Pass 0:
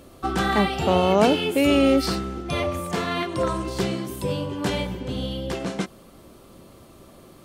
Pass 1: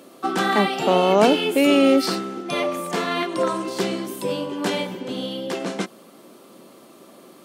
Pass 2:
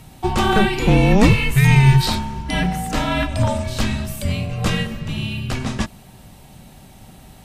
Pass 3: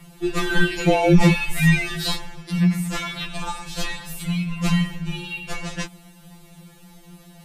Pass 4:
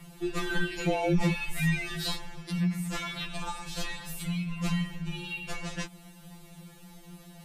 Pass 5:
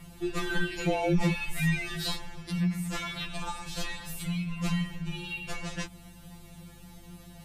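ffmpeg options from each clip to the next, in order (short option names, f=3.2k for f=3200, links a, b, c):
-af "highpass=f=200:w=0.5412,highpass=f=200:w=1.3066,volume=2.5dB"
-af "afreqshift=-410,volume=4dB"
-af "afftfilt=real='re*2.83*eq(mod(b,8),0)':imag='im*2.83*eq(mod(b,8),0)':win_size=2048:overlap=0.75"
-af "acompressor=threshold=-34dB:ratio=1.5,volume=-3dB"
-af "aeval=exprs='val(0)+0.002*(sin(2*PI*50*n/s)+sin(2*PI*2*50*n/s)/2+sin(2*PI*3*50*n/s)/3+sin(2*PI*4*50*n/s)/4+sin(2*PI*5*50*n/s)/5)':c=same"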